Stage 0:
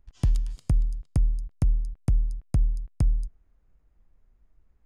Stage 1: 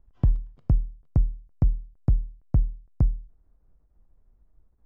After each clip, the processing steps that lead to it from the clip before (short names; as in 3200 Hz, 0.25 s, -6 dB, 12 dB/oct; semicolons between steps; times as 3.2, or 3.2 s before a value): LPF 1100 Hz 12 dB/oct; ending taper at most 140 dB/s; gain +2.5 dB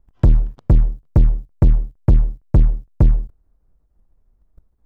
sample leveller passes 3; in parallel at -9 dB: hard clip -26.5 dBFS, distortion -6 dB; on the sum: gain +4.5 dB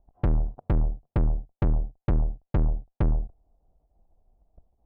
synth low-pass 730 Hz, resonance Q 4.9; tube stage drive 16 dB, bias 0.4; gain -3 dB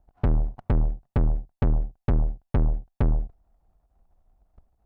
minimum comb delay 1.1 ms; gain +1.5 dB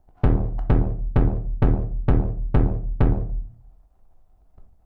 reverb RT60 0.50 s, pre-delay 7 ms, DRR 5 dB; gain +4 dB